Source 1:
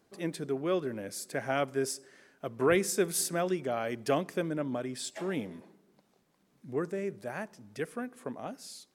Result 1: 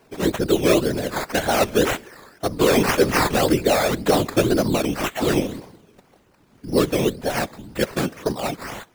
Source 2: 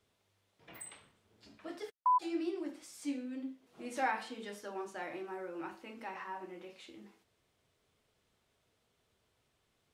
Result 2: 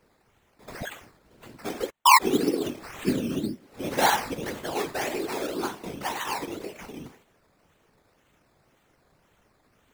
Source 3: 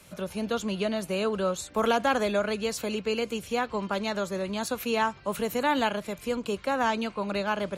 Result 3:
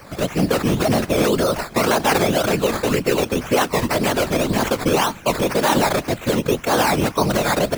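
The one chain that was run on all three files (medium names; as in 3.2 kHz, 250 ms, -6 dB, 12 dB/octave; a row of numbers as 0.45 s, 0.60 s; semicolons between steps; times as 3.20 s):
decimation with a swept rate 12×, swing 60% 1.9 Hz; peak limiter -22.5 dBFS; whisper effect; peak normalisation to -3 dBFS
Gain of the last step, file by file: +14.0 dB, +12.5 dB, +12.0 dB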